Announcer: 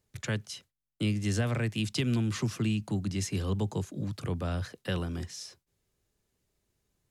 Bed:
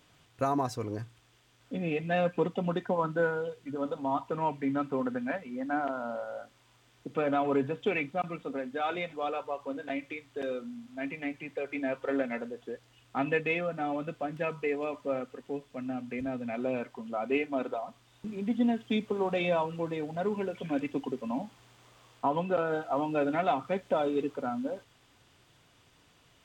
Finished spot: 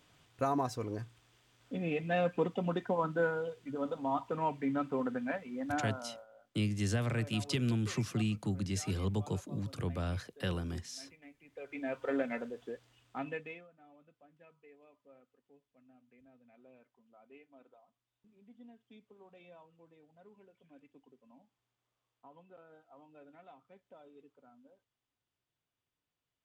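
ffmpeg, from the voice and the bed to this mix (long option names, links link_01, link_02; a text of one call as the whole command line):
ffmpeg -i stem1.wav -i stem2.wav -filter_complex "[0:a]adelay=5550,volume=-3.5dB[link_01];[1:a]volume=14.5dB,afade=type=out:start_time=5.66:duration=0.61:silence=0.133352,afade=type=in:start_time=11.44:duration=0.61:silence=0.133352,afade=type=out:start_time=12.66:duration=1.02:silence=0.0530884[link_02];[link_01][link_02]amix=inputs=2:normalize=0" out.wav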